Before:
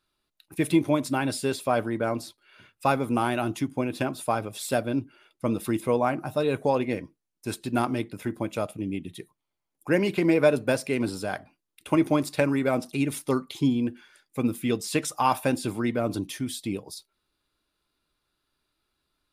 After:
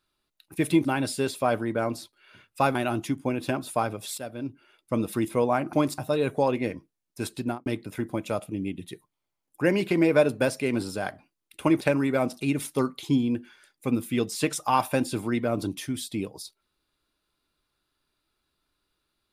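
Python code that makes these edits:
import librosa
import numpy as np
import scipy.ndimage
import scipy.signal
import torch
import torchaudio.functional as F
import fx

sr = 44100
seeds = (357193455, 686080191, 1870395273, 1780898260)

y = fx.studio_fade_out(x, sr, start_s=7.66, length_s=0.27)
y = fx.edit(y, sr, fx.cut(start_s=0.85, length_s=0.25),
    fx.cut(start_s=3.0, length_s=0.27),
    fx.fade_in_from(start_s=4.7, length_s=0.75, floor_db=-14.0),
    fx.move(start_s=12.08, length_s=0.25, to_s=6.25), tone=tone)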